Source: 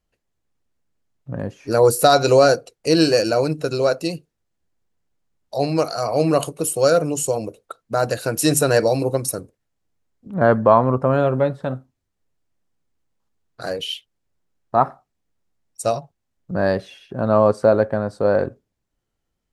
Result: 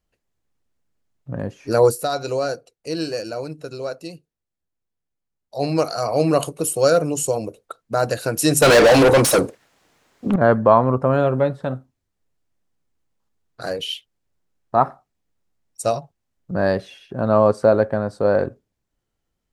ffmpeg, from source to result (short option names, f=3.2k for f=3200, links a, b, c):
-filter_complex "[0:a]asettb=1/sr,asplit=3[a][b][c];[a]atrim=end=8.624[d];[b]atrim=start=8.62:end=10.36,asetpts=PTS-STARTPTS,afade=t=in:d=0.004:c=qsin,afade=t=out:st=1.736:d=0.004:c=qsin,asplit=2[e][f];[f]highpass=f=720:p=1,volume=34dB,asoftclip=type=tanh:threshold=-5dB[g];[e][g]amix=inputs=2:normalize=0,lowpass=f=3.7k:p=1,volume=-6dB[h];[c]atrim=start=10.356[i];[d][h]acrossfade=d=0.004:c1=hsin:c2=qsin[j];[j][i]acrossfade=d=0.004:c1=qsin:c2=hsin,asplit=3[k][l][m];[k]atrim=end=1.98,asetpts=PTS-STARTPTS,afade=t=out:st=1.85:d=0.13:silence=0.316228[n];[l]atrim=start=1.98:end=5.53,asetpts=PTS-STARTPTS,volume=-10dB[o];[m]atrim=start=5.53,asetpts=PTS-STARTPTS,afade=t=in:d=0.13:silence=0.316228[p];[n][o][p]concat=n=3:v=0:a=1"